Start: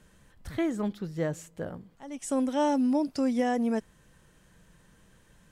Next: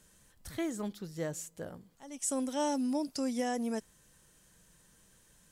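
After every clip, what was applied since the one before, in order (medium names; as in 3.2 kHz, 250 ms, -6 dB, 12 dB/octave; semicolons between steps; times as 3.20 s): tone controls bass -2 dB, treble +12 dB; trim -6 dB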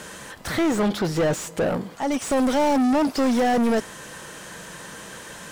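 overdrive pedal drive 34 dB, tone 1.4 kHz, clips at -21 dBFS; trim +8 dB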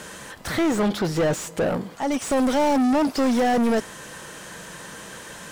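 no audible change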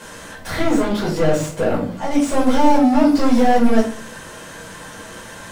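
reverberation RT60 0.50 s, pre-delay 6 ms, DRR -6 dB; trim -5.5 dB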